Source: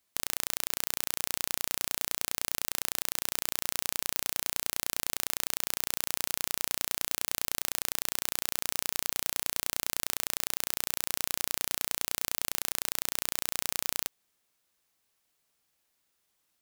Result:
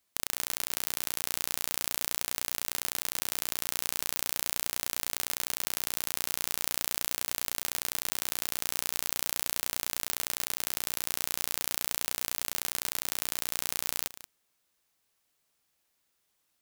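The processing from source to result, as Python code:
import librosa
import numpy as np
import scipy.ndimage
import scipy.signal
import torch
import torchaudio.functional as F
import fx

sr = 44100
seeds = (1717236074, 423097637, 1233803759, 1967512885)

y = x + fx.echo_single(x, sr, ms=181, db=-15.0, dry=0)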